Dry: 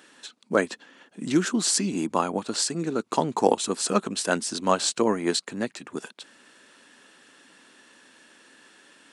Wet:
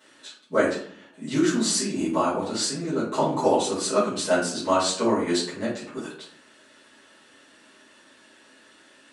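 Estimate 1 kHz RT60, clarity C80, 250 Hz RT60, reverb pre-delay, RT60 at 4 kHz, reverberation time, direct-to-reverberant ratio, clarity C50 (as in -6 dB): 0.55 s, 9.0 dB, 0.75 s, 4 ms, 0.35 s, 0.60 s, -12.0 dB, 4.0 dB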